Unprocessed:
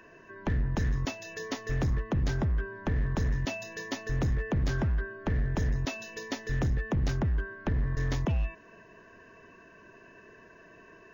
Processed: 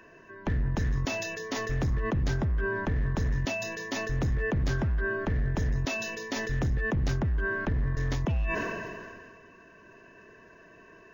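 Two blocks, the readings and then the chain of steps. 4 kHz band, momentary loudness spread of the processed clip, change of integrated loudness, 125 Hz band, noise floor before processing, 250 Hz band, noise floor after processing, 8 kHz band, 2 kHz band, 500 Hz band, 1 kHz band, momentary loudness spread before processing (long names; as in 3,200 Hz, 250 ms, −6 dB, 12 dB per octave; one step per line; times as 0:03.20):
+2.5 dB, 5 LU, +1.5 dB, +0.5 dB, −55 dBFS, +1.0 dB, −54 dBFS, can't be measured, +6.0 dB, +4.0 dB, +3.5 dB, 8 LU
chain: level that may fall only so fast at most 28 dB per second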